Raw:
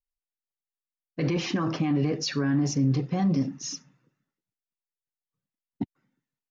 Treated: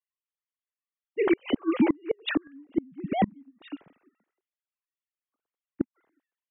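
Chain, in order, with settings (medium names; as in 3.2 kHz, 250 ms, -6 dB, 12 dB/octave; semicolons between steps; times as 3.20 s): formants replaced by sine waves; inverted gate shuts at -20 dBFS, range -35 dB; trim +8 dB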